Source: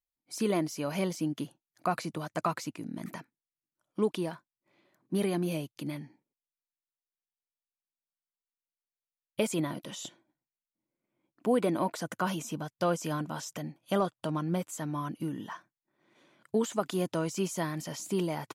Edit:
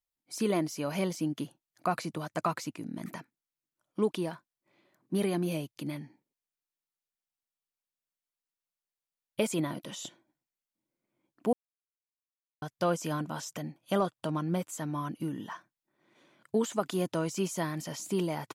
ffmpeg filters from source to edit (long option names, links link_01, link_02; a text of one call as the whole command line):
ffmpeg -i in.wav -filter_complex "[0:a]asplit=3[link_01][link_02][link_03];[link_01]atrim=end=11.53,asetpts=PTS-STARTPTS,afade=type=out:start_time=11.526:duration=0.004:curve=hsin[link_04];[link_02]atrim=start=11.53:end=12.62,asetpts=PTS-STARTPTS,volume=0[link_05];[link_03]atrim=start=12.62,asetpts=PTS-STARTPTS,afade=type=in:duration=0.004:curve=hsin[link_06];[link_04][link_05][link_06]concat=n=3:v=0:a=1" out.wav